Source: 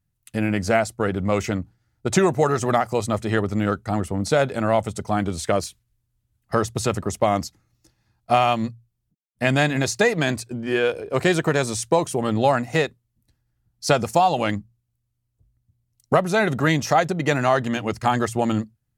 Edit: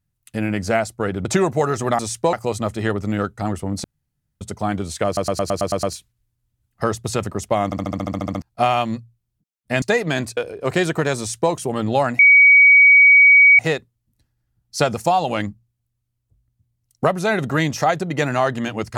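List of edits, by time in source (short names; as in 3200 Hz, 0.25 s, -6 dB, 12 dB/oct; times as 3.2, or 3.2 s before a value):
1.25–2.07 cut
4.32–4.89 room tone
5.54 stutter 0.11 s, 8 plays
7.36 stutter in place 0.07 s, 11 plays
9.53–9.93 cut
10.48–10.86 cut
11.67–12.01 copy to 2.81
12.68 add tone 2260 Hz -6.5 dBFS 1.40 s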